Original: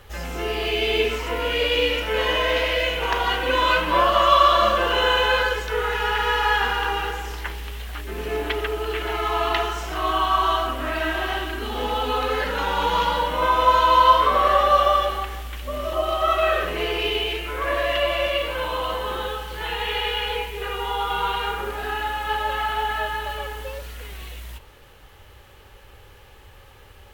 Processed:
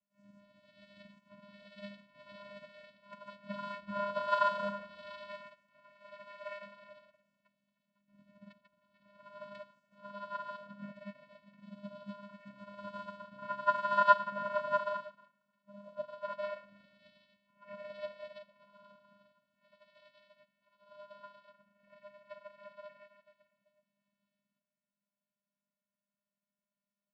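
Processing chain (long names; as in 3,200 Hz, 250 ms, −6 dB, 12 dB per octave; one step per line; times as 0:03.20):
channel vocoder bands 8, square 202 Hz
low-shelf EQ 360 Hz +4.5 dB
bucket-brigade delay 309 ms, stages 4,096, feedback 45%, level −11.5 dB
expander for the loud parts 2.5 to 1, over −34 dBFS
level −7.5 dB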